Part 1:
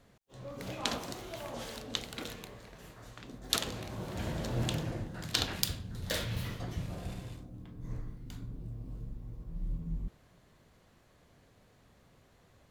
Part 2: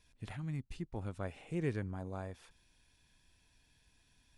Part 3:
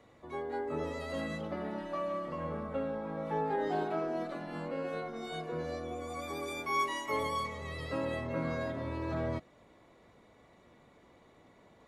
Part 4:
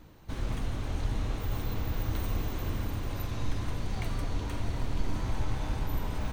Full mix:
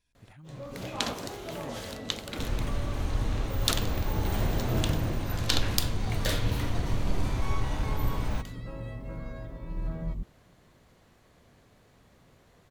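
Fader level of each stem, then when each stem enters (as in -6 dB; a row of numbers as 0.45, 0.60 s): +3.0, -8.5, -9.5, +2.0 dB; 0.15, 0.00, 0.75, 2.10 s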